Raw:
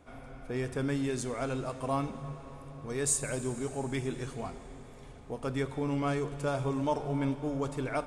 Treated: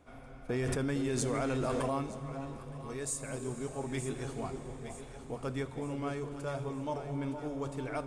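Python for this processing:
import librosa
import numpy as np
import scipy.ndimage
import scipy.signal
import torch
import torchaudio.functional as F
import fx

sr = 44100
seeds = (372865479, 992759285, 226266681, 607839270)

y = fx.rider(x, sr, range_db=4, speed_s=0.5)
y = fx.echo_alternate(y, sr, ms=458, hz=870.0, feedback_pct=68, wet_db=-7.0)
y = fx.env_flatten(y, sr, amount_pct=100, at=(0.49, 1.98))
y = y * 10.0 ** (-5.0 / 20.0)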